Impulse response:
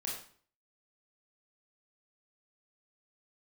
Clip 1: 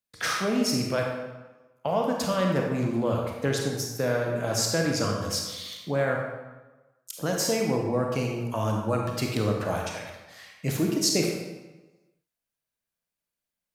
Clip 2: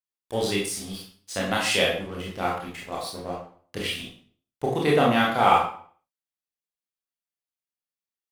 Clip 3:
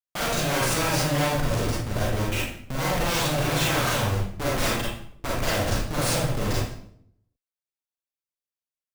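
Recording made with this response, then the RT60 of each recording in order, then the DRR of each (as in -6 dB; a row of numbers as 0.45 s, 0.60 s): 2; 1.2 s, 0.50 s, 0.65 s; 0.0 dB, -4.0 dB, -5.5 dB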